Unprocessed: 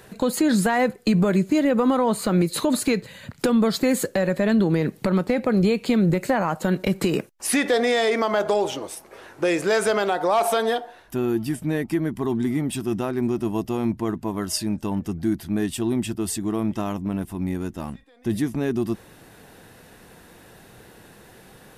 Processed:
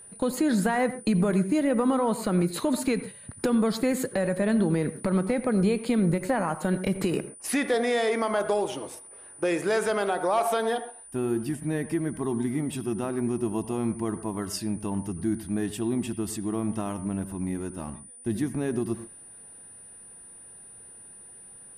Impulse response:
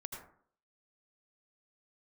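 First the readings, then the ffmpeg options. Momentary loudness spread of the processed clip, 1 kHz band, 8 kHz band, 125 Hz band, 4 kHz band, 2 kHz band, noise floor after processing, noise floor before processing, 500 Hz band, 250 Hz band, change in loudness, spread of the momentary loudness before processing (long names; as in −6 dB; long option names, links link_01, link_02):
20 LU, −4.0 dB, −3.5 dB, −4.0 dB, −7.5 dB, −5.0 dB, −48 dBFS, −50 dBFS, −4.0 dB, −4.0 dB, −4.0 dB, 8 LU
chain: -filter_complex "[0:a]agate=range=-8dB:threshold=-36dB:ratio=16:detection=peak,aeval=exprs='val(0)+0.0126*sin(2*PI*9400*n/s)':channel_layout=same,asplit=2[link_01][link_02];[1:a]atrim=start_sample=2205,afade=type=out:start_time=0.19:duration=0.01,atrim=end_sample=8820,lowpass=2900[link_03];[link_02][link_03]afir=irnorm=-1:irlink=0,volume=-4dB[link_04];[link_01][link_04]amix=inputs=2:normalize=0,volume=-7dB"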